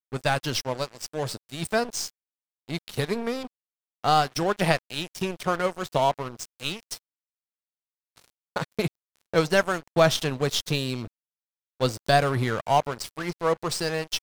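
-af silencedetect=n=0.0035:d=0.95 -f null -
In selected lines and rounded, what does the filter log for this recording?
silence_start: 6.99
silence_end: 8.16 | silence_duration: 1.18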